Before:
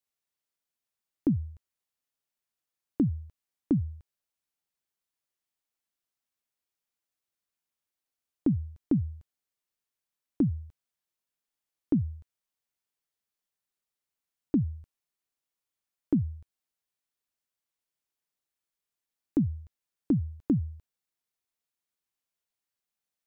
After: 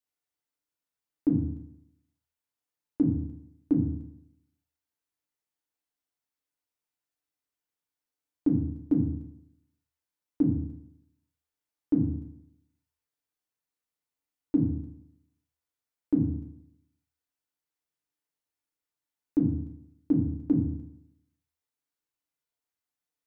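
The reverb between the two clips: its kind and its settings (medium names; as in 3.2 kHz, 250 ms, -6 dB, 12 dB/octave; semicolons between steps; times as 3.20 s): FDN reverb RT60 0.78 s, low-frequency decay 1×, high-frequency decay 0.35×, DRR -1.5 dB; trim -5 dB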